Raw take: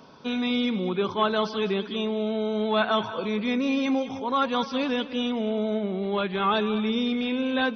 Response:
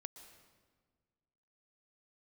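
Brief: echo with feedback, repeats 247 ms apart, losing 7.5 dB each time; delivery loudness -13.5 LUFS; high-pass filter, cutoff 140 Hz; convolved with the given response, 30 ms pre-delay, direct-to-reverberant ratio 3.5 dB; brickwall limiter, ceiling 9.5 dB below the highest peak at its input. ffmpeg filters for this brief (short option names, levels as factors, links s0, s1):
-filter_complex "[0:a]highpass=140,alimiter=limit=0.0891:level=0:latency=1,aecho=1:1:247|494|741|988|1235:0.422|0.177|0.0744|0.0312|0.0131,asplit=2[s0][s1];[1:a]atrim=start_sample=2205,adelay=30[s2];[s1][s2]afir=irnorm=-1:irlink=0,volume=1.19[s3];[s0][s3]amix=inputs=2:normalize=0,volume=4.73"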